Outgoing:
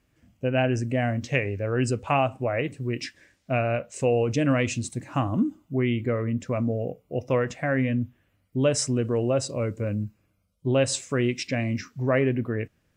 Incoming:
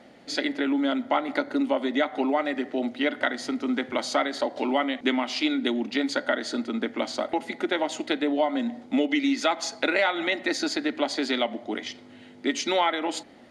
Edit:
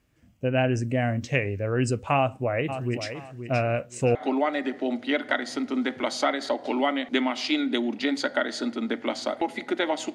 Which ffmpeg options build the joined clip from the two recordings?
-filter_complex "[0:a]asplit=3[a][b][c];[a]afade=t=out:st=2.68:d=0.02[d];[b]aecho=1:1:524|1048|1572:0.335|0.0804|0.0193,afade=t=in:st=2.68:d=0.02,afade=t=out:st=4.15:d=0.02[e];[c]afade=t=in:st=4.15:d=0.02[f];[d][e][f]amix=inputs=3:normalize=0,apad=whole_dur=10.14,atrim=end=10.14,atrim=end=4.152[g];[1:a]atrim=start=2.068:end=8.06[h];[g][h]acrossfade=d=0.004:c1=hsin:c2=hsin"

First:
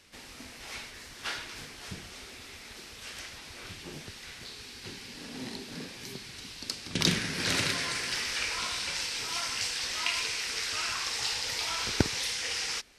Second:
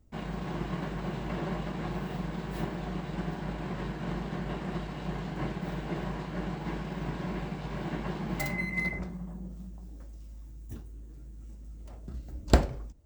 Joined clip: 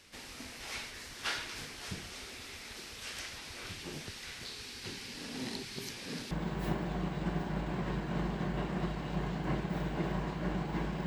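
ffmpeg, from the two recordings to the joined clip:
-filter_complex "[0:a]apad=whole_dur=11.06,atrim=end=11.06,asplit=2[a][b];[a]atrim=end=5.632[c];[b]atrim=start=5.628:end=6.312,asetpts=PTS-STARTPTS,areverse[d];[1:a]atrim=start=2.228:end=6.98[e];[c][d]acrossfade=d=0.004:c1=hsin:c2=hsin[f];[f][e]acrossfade=d=0.004:c1=hsin:c2=hsin"

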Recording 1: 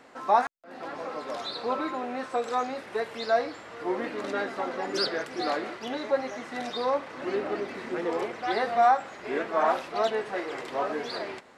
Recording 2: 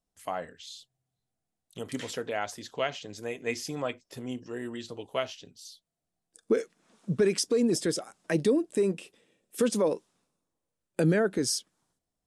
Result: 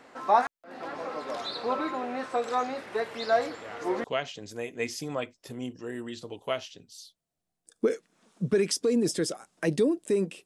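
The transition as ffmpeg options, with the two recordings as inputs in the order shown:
-filter_complex "[1:a]asplit=2[a][b];[0:a]apad=whole_dur=10.45,atrim=end=10.45,atrim=end=4.042[c];[b]atrim=start=2.708:end=9.12[d];[a]atrim=start=1.98:end=2.71,asetpts=PTS-STARTPTS,volume=-11.5dB,afade=t=in:d=0.004:c=hsin,afade=t=out:st=0.726:d=0.004:c=hsin,adelay=3310[e];[c][d]acrossfade=d=0.004:c1=hsin:c2=hsin[f];[f][e]amix=inputs=2:normalize=0"

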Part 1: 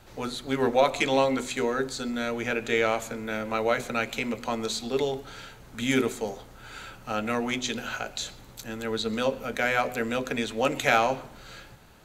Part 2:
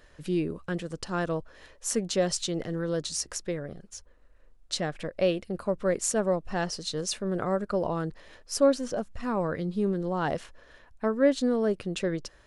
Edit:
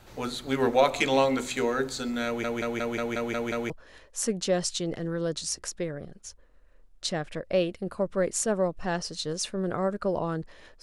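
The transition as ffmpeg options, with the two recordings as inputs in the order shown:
-filter_complex "[0:a]apad=whole_dur=10.82,atrim=end=10.82,asplit=8[a][b][c][d][e][f][g][h];[a]atrim=end=2.442[i];[b]atrim=start=2.258:end=2.442[j];[c]atrim=start=2.258:end=2.442[k];[d]atrim=start=2.258:end=2.442[l];[e]atrim=start=2.258:end=2.442[m];[f]atrim=start=2.258:end=2.442[n];[g]atrim=start=2.258:end=2.442[o];[h]atrim=start=2.258:end=2.442[p];[1:a]atrim=start=1.378:end=8.5[q];[i][j]acrossfade=d=0.004:c1=hsin:c2=hsin[r];[r][k]acrossfade=d=0.004:c1=hsin:c2=hsin[s];[s][l]acrossfade=d=0.004:c1=hsin:c2=hsin[t];[t][m]acrossfade=d=0.004:c1=hsin:c2=hsin[u];[u][n]acrossfade=d=0.004:c1=hsin:c2=hsin[v];[v][o]acrossfade=d=0.004:c1=hsin:c2=hsin[w];[w][p]acrossfade=d=0.004:c1=hsin:c2=hsin[x];[x][q]acrossfade=d=0.004:c1=hsin:c2=hsin"

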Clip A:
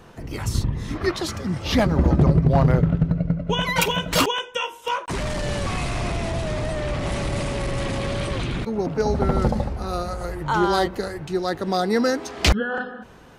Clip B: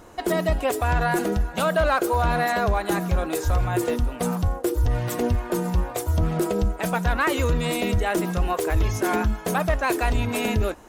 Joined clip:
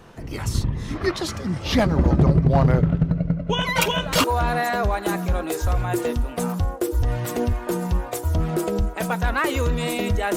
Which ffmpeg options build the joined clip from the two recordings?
-filter_complex "[1:a]asplit=2[a][b];[0:a]apad=whole_dur=10.36,atrim=end=10.36,atrim=end=4.242[c];[b]atrim=start=2.068:end=8.19[d];[a]atrim=start=1.58:end=2.07,asetpts=PTS-STARTPTS,volume=-13.5dB,afade=t=in:d=0.004:c=hsin,afade=t=out:st=0.486:d=0.004:c=hsin,adelay=3750[e];[c][d]acrossfade=d=0.004:c1=hsin:c2=hsin[f];[f][e]amix=inputs=2:normalize=0"

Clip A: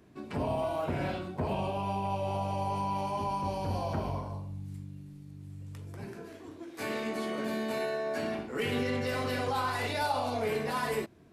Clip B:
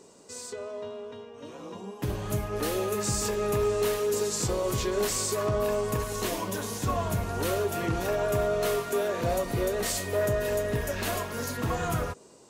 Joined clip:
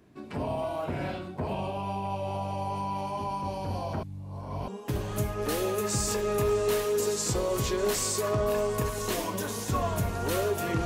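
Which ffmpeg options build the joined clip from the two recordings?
-filter_complex "[0:a]apad=whole_dur=10.85,atrim=end=10.85,asplit=2[a][b];[a]atrim=end=4.032[c];[b]atrim=start=4.028:end=4.682,asetpts=PTS-STARTPTS,areverse[d];[1:a]atrim=start=1.818:end=7.99[e];[c][d]acrossfade=d=0.004:c1=hsin:c2=hsin[f];[f][e]acrossfade=d=0.004:c1=hsin:c2=hsin"

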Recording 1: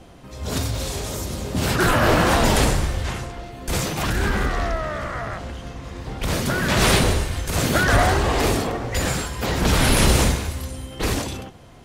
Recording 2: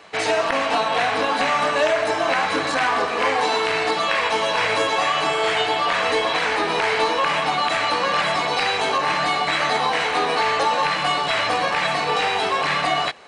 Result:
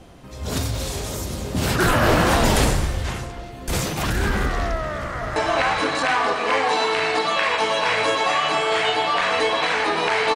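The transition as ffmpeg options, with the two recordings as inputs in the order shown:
-filter_complex "[0:a]apad=whole_dur=10.35,atrim=end=10.35,atrim=end=5.362[a];[1:a]atrim=start=2.078:end=7.07[b];[a][b]acrossfade=d=0.004:c1=hsin:c2=hsin,asplit=2[c][d];[d]afade=t=in:st=4.77:d=0.01,afade=t=out:st=5.36:d=0.01,aecho=0:1:440|880|1320:0.530884|0.106177|0.0212354[e];[c][e]amix=inputs=2:normalize=0"

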